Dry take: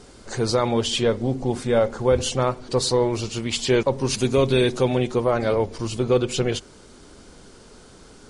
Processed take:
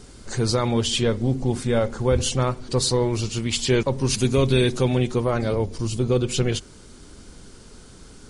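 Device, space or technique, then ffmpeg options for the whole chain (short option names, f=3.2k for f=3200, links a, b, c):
smiley-face EQ: -filter_complex "[0:a]asettb=1/sr,asplit=3[a][b][c];[a]atrim=end=5.414[d];[b]atrim=start=5.41:end=6.25,asetpts=PTS-STARTPTS,afade=t=in:d=0.004:c=qsin,afade=t=out:st=0.836:d=0.004:c=qsin,equalizer=f=1.8k:t=o:w=1.9:g=-4.5[e];[c]atrim=start=6.246[f];[d][e]acrossfade=d=0.004:c1=hsin:c2=qsin[g];[g][f]acrossfade=d=0.004:c1=qsin:c2=hsin,lowshelf=f=180:g=6,equalizer=f=640:t=o:w=1.6:g=-4.5,highshelf=f=9.7k:g=7"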